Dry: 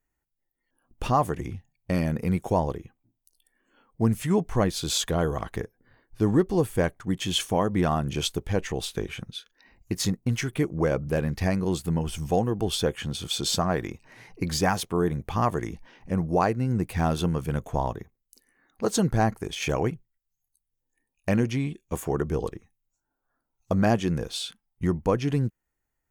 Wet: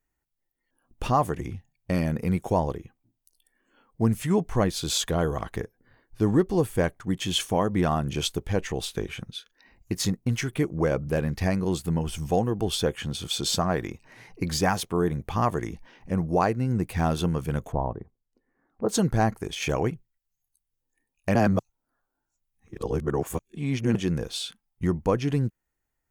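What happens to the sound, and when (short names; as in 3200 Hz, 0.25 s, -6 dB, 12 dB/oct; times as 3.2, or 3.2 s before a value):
17.72–18.89 LPF 1000 Hz
21.35–23.95 reverse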